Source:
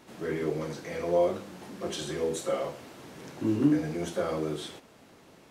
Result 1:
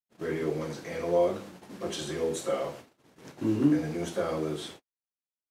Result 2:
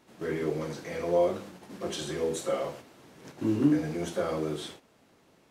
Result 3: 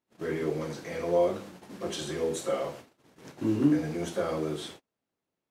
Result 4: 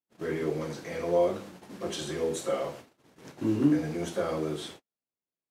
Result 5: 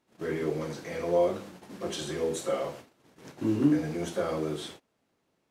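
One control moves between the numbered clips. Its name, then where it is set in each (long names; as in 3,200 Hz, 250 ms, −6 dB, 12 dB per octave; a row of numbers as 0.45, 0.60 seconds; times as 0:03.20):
noise gate, range: −60, −7, −32, −46, −20 decibels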